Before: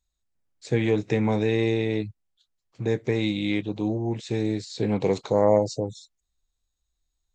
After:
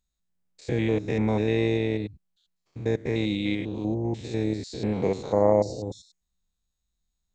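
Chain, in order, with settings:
spectrum averaged block by block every 100 ms
amplitude modulation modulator 180 Hz, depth 20%
level +1 dB

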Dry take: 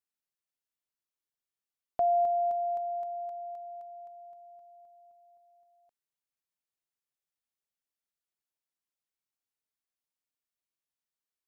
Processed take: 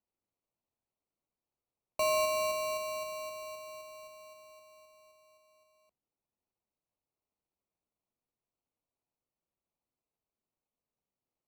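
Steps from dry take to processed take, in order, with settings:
noise that follows the level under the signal 24 dB
frequency shifter −73 Hz
decimation without filtering 26×
level −3.5 dB

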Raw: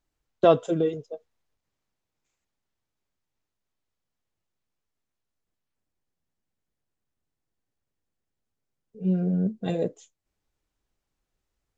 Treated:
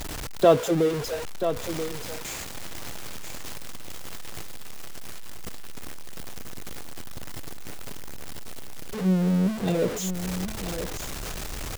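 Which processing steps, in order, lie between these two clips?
converter with a step at zero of −27 dBFS
single-tap delay 983 ms −9.5 dB

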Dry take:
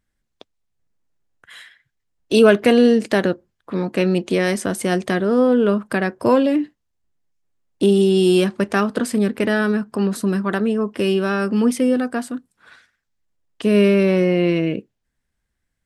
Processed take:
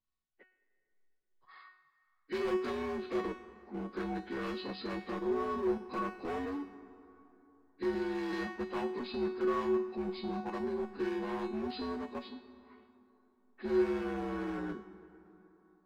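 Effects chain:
partials spread apart or drawn together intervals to 78%
dynamic equaliser 230 Hz, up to −4 dB, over −29 dBFS, Q 5.6
in parallel at −2 dB: output level in coarse steps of 24 dB
on the sum: pitch vibrato 12 Hz 9.9 cents
gain into a clipping stage and back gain 17 dB
tuned comb filter 370 Hz, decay 0.55 s, mix 90%
on a send at −15 dB: parametric band 550 Hz −5.5 dB 0.34 octaves + convolution reverb RT60 3.5 s, pre-delay 98 ms

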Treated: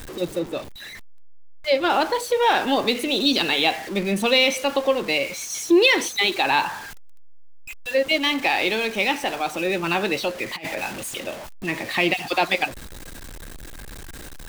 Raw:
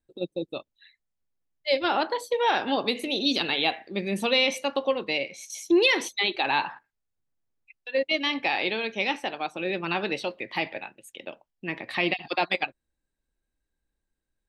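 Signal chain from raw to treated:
converter with a step at zero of −34.5 dBFS
0:00.39–0:01.90: high-shelf EQ 4,200 Hz −7.5 dB
0:10.56–0:11.18: compressor whose output falls as the input rises −32 dBFS, ratio −0.5
level +4 dB

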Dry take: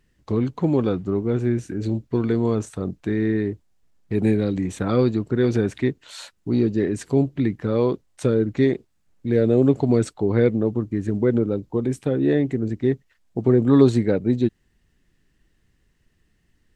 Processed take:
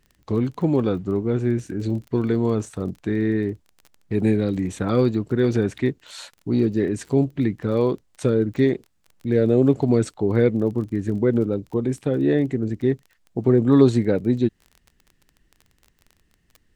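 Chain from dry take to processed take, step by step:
surface crackle 21 per second −35 dBFS

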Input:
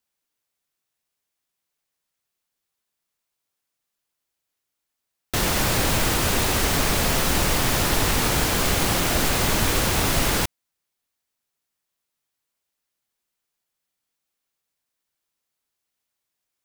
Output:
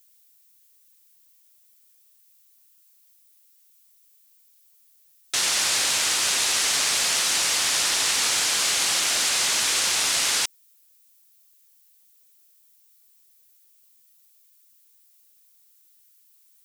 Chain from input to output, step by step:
meter weighting curve ITU-R 468
background noise violet −53 dBFS
level −6 dB

